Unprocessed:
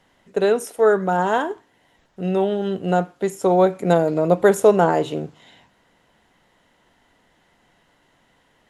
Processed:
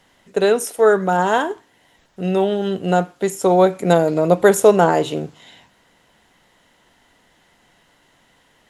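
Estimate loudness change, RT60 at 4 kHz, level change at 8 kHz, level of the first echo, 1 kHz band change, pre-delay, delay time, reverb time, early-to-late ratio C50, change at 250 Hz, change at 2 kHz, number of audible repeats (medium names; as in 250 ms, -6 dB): +2.5 dB, no reverb, +7.5 dB, no echo, +2.5 dB, no reverb, no echo, no reverb, no reverb, +2.0 dB, +3.5 dB, no echo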